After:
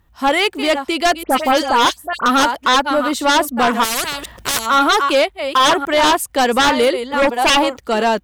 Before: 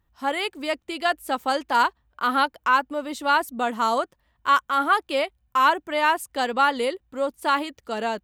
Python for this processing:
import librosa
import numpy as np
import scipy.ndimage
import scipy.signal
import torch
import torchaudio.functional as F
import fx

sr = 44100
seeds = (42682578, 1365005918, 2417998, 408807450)

y = fx.reverse_delay(x, sr, ms=532, wet_db=-11.5)
y = fx.peak_eq(y, sr, hz=860.0, db=10.0, octaves=0.79, at=(7.22, 7.78))
y = fx.fold_sine(y, sr, drive_db=13, ceiling_db=-4.5)
y = fx.dispersion(y, sr, late='highs', ms=75.0, hz=2700.0, at=(1.23, 2.26))
y = fx.spectral_comp(y, sr, ratio=4.0, at=(3.83, 4.65), fade=0.02)
y = F.gain(torch.from_numpy(y), -4.5).numpy()